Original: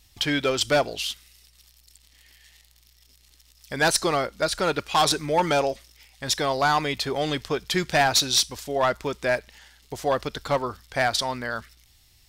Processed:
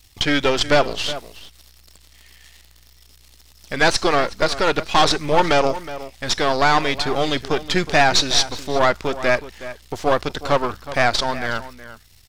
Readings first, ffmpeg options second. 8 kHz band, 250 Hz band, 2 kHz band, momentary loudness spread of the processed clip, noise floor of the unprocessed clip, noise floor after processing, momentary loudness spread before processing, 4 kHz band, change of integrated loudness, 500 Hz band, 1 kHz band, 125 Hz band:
0.0 dB, +5.5 dB, +6.0 dB, 12 LU, -59 dBFS, -51 dBFS, 10 LU, +4.0 dB, +4.5 dB, +5.0 dB, +5.0 dB, +4.5 dB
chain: -filter_complex "[0:a]aeval=exprs='if(lt(val(0),0),0.251*val(0),val(0))':c=same,acrossover=split=6800[s0][s1];[s1]acompressor=threshold=0.00178:ratio=4:attack=1:release=60[s2];[s0][s2]amix=inputs=2:normalize=0,asplit=2[s3][s4];[s4]adelay=367.3,volume=0.2,highshelf=f=4000:g=-8.27[s5];[s3][s5]amix=inputs=2:normalize=0,volume=2.66"

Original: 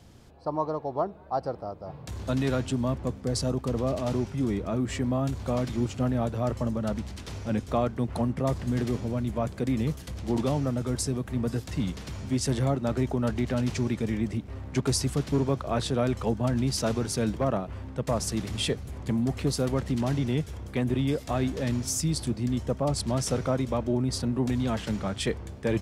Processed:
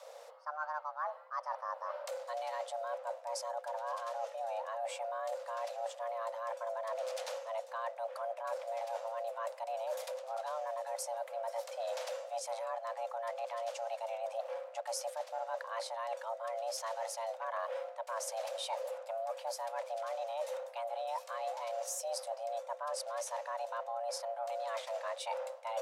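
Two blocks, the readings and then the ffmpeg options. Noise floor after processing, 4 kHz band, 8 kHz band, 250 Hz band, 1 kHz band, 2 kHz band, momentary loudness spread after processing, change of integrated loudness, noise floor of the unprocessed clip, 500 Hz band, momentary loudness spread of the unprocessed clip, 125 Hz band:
-51 dBFS, -11.0 dB, -9.5 dB, under -40 dB, -1.5 dB, -6.5 dB, 2 LU, -11.0 dB, -43 dBFS, -7.0 dB, 5 LU, under -40 dB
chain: -af "areverse,acompressor=threshold=0.0158:ratio=16,areverse,afreqshift=450,volume=1.12"

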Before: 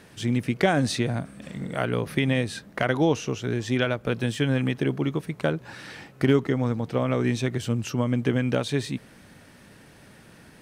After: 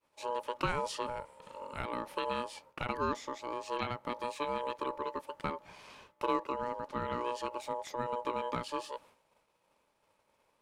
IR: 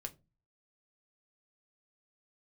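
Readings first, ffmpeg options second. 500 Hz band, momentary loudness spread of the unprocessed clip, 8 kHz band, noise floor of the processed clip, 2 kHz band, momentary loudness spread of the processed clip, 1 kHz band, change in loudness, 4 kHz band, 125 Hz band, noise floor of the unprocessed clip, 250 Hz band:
-10.5 dB, 10 LU, -12.5 dB, -75 dBFS, -12.5 dB, 10 LU, -0.5 dB, -11.5 dB, -11.0 dB, -22.5 dB, -52 dBFS, -18.0 dB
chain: -af "aeval=exprs='val(0)*sin(2*PI*730*n/s)':c=same,agate=range=0.0224:threshold=0.00631:ratio=3:detection=peak,volume=0.355"

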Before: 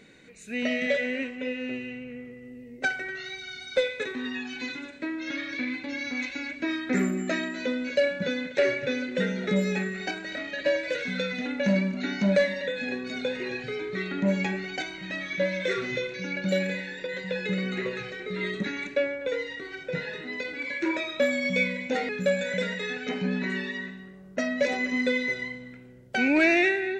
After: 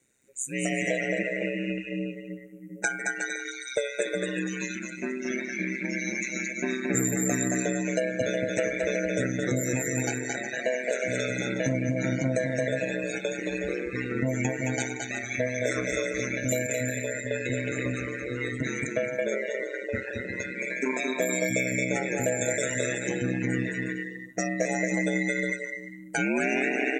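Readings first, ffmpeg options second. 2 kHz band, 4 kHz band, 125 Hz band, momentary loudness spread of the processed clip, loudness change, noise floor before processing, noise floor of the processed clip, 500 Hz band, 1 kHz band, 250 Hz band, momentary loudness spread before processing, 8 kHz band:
-1.0 dB, -5.5 dB, +3.5 dB, 7 LU, -0.5 dB, -46 dBFS, -41 dBFS, -0.5 dB, -0.5 dB, -0.5 dB, 9 LU, +15.0 dB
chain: -filter_complex "[0:a]bandreject=f=3100:w=20,asplit=2[s0][s1];[s1]aecho=0:1:220|363|456|516.4|555.6:0.631|0.398|0.251|0.158|0.1[s2];[s0][s2]amix=inputs=2:normalize=0,acompressor=threshold=0.0708:ratio=6,aexciter=amount=13.7:drive=5.4:freq=6500,aeval=exprs='val(0)*sin(2*PI*65*n/s)':c=same,afftdn=nr=19:nf=-38,volume=1.41"

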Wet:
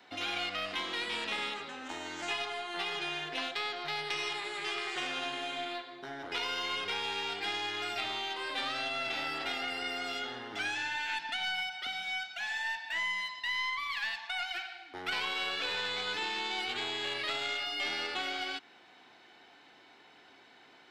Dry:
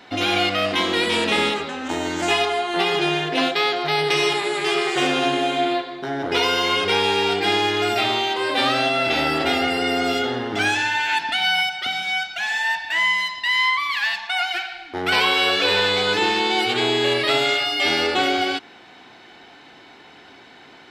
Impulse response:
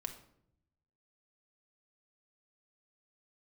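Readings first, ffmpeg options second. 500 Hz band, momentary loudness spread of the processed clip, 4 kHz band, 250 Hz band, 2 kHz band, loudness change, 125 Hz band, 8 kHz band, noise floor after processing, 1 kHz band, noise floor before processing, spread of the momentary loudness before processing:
-20.0 dB, 5 LU, -13.5 dB, -21.0 dB, -13.0 dB, -14.5 dB, -22.0 dB, -14.0 dB, -59 dBFS, -15.5 dB, -46 dBFS, 5 LU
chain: -filter_complex "[0:a]lowshelf=f=230:g=-8,aeval=exprs='0.562*(cos(1*acos(clip(val(0)/0.562,-1,1)))-cos(1*PI/2))+0.0708*(cos(3*acos(clip(val(0)/0.562,-1,1)))-cos(3*PI/2))+0.0178*(cos(4*acos(clip(val(0)/0.562,-1,1)))-cos(4*PI/2))':c=same,acrossover=split=310|790|1800|7400[s0][s1][s2][s3][s4];[s0]acompressor=threshold=0.00794:ratio=4[s5];[s1]acompressor=threshold=0.00708:ratio=4[s6];[s2]acompressor=threshold=0.0282:ratio=4[s7];[s3]acompressor=threshold=0.0447:ratio=4[s8];[s4]acompressor=threshold=0.00158:ratio=4[s9];[s5][s6][s7][s8][s9]amix=inputs=5:normalize=0,volume=0.422"

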